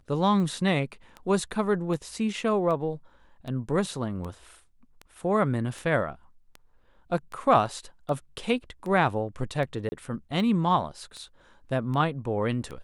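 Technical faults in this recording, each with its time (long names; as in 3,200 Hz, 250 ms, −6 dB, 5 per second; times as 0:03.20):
scratch tick 78 rpm −25 dBFS
0:09.89–0:09.92: drop-out 30 ms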